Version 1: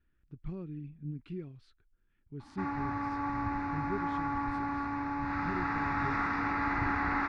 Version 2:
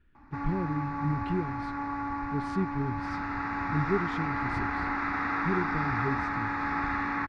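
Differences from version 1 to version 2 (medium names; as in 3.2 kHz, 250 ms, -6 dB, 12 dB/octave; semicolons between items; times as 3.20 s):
speech +9.5 dB; background: entry -2.25 s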